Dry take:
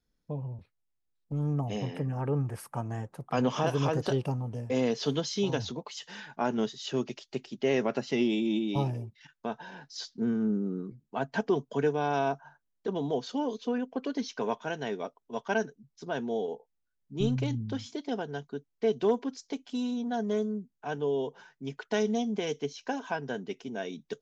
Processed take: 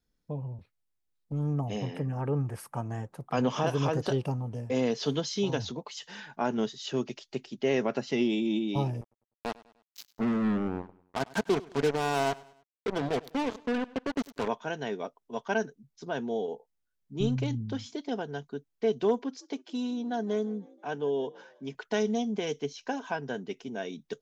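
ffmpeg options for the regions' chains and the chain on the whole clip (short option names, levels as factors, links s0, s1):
-filter_complex "[0:a]asettb=1/sr,asplit=3[s0][s1][s2];[s0]atrim=end=9.014[s3];[s1]atrim=start=9.01:end=14.48,asetpts=PTS-STARTPTS,afade=t=in:d=0.004:c=qsin,afade=t=out:st=5.466:d=0.004:c=qsin,acrusher=bits=4:mix=0:aa=0.5,aecho=1:1:100|200|300:0.0891|0.0392|0.0173,atrim=end_sample=241227[s4];[s2]atrim=start=14.476[s5];[s3][s4]acrossfade=d=0.004:c1=hsin:c2=qsin[s6];[s6][s5]acrossfade=d=0.004:c1=qsin:c2=hsin,asettb=1/sr,asplit=3[s7][s8][s9];[s7]atrim=end=19.224[s10];[s8]atrim=start=19.22:end=21.75,asetpts=PTS-STARTPTS,afade=t=in:d=0.004:c=qsin,afade=t=out:st=2.526:d=0.004:c=qsin,highpass=160,lowpass=7500,asplit=4[s11][s12][s13][s14];[s12]adelay=160,afreqshift=55,volume=0.0708[s15];[s13]adelay=320,afreqshift=110,volume=0.0305[s16];[s14]adelay=480,afreqshift=165,volume=0.013[s17];[s11][s15][s16][s17]amix=inputs=4:normalize=0,atrim=end_sample=111573[s18];[s9]atrim=start=21.746[s19];[s10][s18]acrossfade=d=0.004:c1=hsin:c2=qsin[s20];[s20][s19]acrossfade=d=0.004:c1=qsin:c2=hsin"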